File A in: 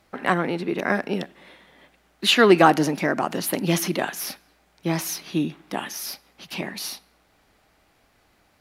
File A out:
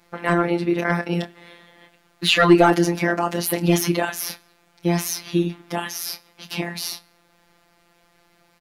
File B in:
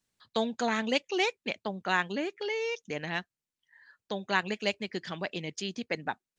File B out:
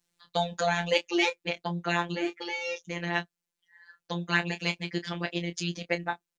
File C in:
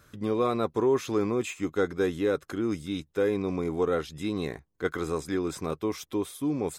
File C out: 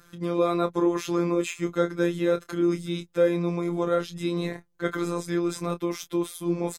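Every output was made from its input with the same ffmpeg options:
-filter_complex "[0:a]asplit=2[a][b];[b]adelay=26,volume=-10.5dB[c];[a][c]amix=inputs=2:normalize=0,afftfilt=real='hypot(re,im)*cos(PI*b)':imag='0':win_size=1024:overlap=0.75,acontrast=80,volume=-1dB"

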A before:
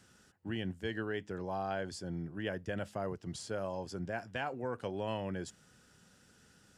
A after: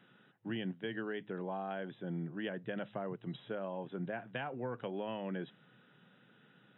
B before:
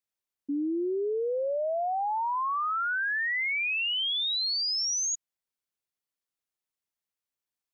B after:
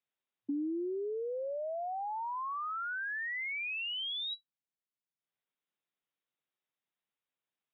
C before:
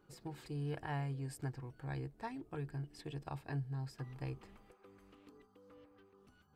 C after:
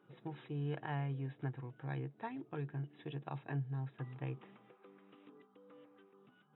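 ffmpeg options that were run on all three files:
-filter_complex "[0:a]acrossover=split=200[a][b];[b]acompressor=threshold=-37dB:ratio=10[c];[a][c]amix=inputs=2:normalize=0,afftfilt=real='re*between(b*sr/4096,110,3900)':imag='im*between(b*sr/4096,110,3900)':win_size=4096:overlap=0.75,volume=1dB"

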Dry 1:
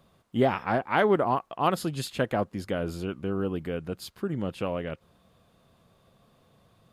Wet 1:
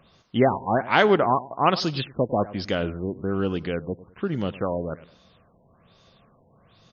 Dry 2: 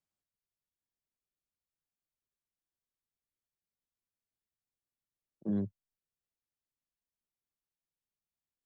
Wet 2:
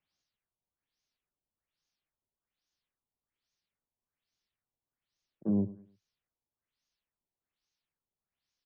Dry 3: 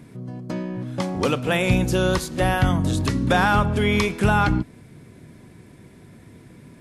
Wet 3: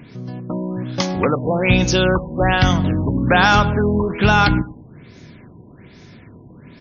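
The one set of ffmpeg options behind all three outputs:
-filter_complex "[0:a]equalizer=f=5.9k:t=o:w=2.3:g=11.5,asplit=2[a][b];[b]adelay=103,lowpass=f=2.4k:p=1,volume=-17.5dB,asplit=2[c][d];[d]adelay=103,lowpass=f=2.4k:p=1,volume=0.32,asplit=2[e][f];[f]adelay=103,lowpass=f=2.4k:p=1,volume=0.32[g];[a][c][e][g]amix=inputs=4:normalize=0,afftfilt=real='re*lt(b*sr/1024,990*pow(6900/990,0.5+0.5*sin(2*PI*1.2*pts/sr)))':imag='im*lt(b*sr/1024,990*pow(6900/990,0.5+0.5*sin(2*PI*1.2*pts/sr)))':win_size=1024:overlap=0.75,volume=3.5dB"

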